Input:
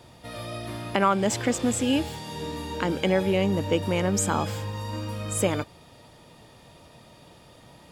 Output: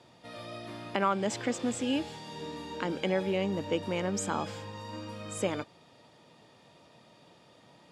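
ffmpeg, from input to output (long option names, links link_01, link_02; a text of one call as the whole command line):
ffmpeg -i in.wav -af "highpass=150,lowpass=7200,volume=-6dB" out.wav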